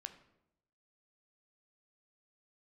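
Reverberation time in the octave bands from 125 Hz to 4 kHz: 1.0 s, 0.90 s, 0.90 s, 0.75 s, 0.65 s, 0.55 s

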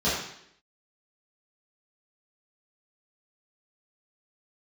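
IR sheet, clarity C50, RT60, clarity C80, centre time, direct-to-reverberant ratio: 1.0 dB, 0.70 s, 5.0 dB, 58 ms, -12.0 dB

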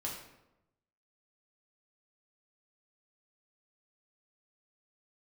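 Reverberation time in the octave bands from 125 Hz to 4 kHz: 1.2 s, 1.0 s, 1.0 s, 0.85 s, 0.70 s, 0.60 s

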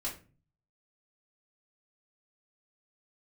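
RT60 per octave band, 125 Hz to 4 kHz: 0.80 s, 0.60 s, 0.40 s, 0.30 s, 0.30 s, 0.25 s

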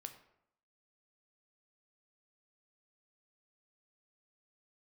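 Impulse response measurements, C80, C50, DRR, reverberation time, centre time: 13.0 dB, 10.5 dB, 6.5 dB, 0.75 s, 11 ms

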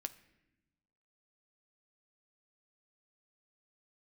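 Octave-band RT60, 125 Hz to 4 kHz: 1.5 s, 1.5 s, 1.1 s, 0.80 s, 1.0 s, 0.75 s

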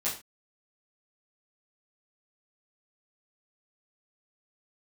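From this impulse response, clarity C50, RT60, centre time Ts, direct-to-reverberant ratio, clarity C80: 8.0 dB, no single decay rate, 28 ms, -9.5 dB, 13.5 dB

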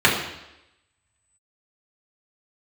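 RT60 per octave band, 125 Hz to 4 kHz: 0.80 s, 0.90 s, 0.90 s, 0.90 s, 0.90 s, 0.90 s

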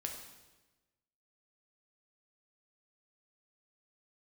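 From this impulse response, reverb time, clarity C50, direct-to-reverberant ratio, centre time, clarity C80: 1.2 s, 5.0 dB, 1.5 dB, 35 ms, 7.5 dB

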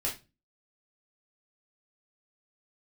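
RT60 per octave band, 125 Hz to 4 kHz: 0.45 s, 0.45 s, 0.30 s, 0.25 s, 0.25 s, 0.25 s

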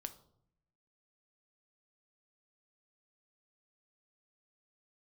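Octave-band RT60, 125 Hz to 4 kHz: 1.1 s, 1.0 s, 0.75 s, 0.65 s, 0.40 s, 0.45 s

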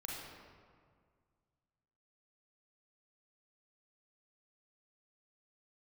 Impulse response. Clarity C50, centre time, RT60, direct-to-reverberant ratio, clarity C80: -1.5 dB, 105 ms, 1.9 s, -3.5 dB, 1.0 dB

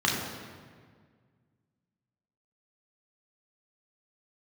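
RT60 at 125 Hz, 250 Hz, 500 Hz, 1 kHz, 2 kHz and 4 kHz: 2.5 s, 2.2 s, 1.9 s, 1.7 s, 1.5 s, 1.2 s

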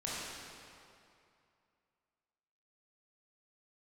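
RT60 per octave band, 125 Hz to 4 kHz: 2.6 s, 2.4 s, 2.5 s, 2.6 s, 2.3 s, 1.9 s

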